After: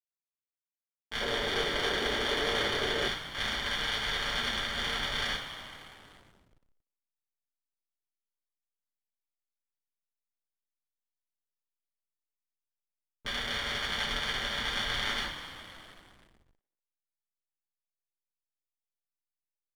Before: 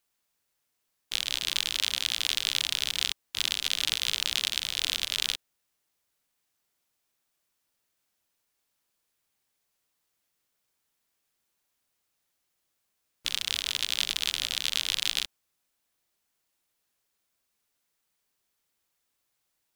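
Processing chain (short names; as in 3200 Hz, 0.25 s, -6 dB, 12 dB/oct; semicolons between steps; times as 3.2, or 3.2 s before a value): polynomial smoothing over 41 samples; sample leveller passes 1; two-slope reverb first 0.29 s, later 3.6 s, from -17 dB, DRR -7.5 dB; backlash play -45 dBFS; 1.21–3.08 bell 420 Hz +14 dB 1.1 oct; speakerphone echo 0.24 s, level -22 dB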